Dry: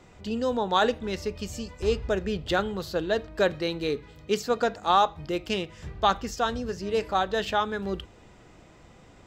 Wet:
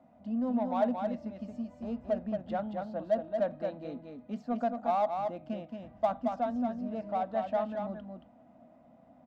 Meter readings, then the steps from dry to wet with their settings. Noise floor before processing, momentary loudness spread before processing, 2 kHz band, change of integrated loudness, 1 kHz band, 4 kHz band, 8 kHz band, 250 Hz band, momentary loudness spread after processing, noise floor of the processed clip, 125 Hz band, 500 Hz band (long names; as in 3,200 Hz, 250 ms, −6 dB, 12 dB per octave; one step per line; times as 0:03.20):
−53 dBFS, 9 LU, −17.5 dB, −6.0 dB, −7.0 dB, below −20 dB, below −25 dB, −1.5 dB, 11 LU, −60 dBFS, −9.5 dB, −5.5 dB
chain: pair of resonant band-passes 400 Hz, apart 1.4 octaves
in parallel at −5 dB: soft clipping −35 dBFS, distortion −7 dB
on the sum: single-tap delay 225 ms −5 dB